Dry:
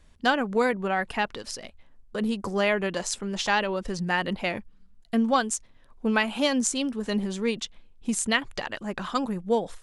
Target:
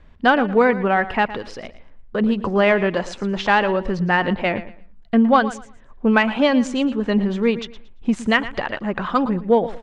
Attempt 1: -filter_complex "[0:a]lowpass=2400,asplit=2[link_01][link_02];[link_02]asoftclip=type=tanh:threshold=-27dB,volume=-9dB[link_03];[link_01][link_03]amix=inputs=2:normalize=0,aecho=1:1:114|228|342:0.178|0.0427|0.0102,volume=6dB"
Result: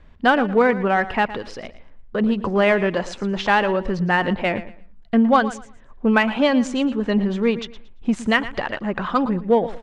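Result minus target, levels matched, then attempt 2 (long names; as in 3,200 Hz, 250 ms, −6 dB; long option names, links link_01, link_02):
soft clipping: distortion +9 dB
-filter_complex "[0:a]lowpass=2400,asplit=2[link_01][link_02];[link_02]asoftclip=type=tanh:threshold=-18dB,volume=-9dB[link_03];[link_01][link_03]amix=inputs=2:normalize=0,aecho=1:1:114|228|342:0.178|0.0427|0.0102,volume=6dB"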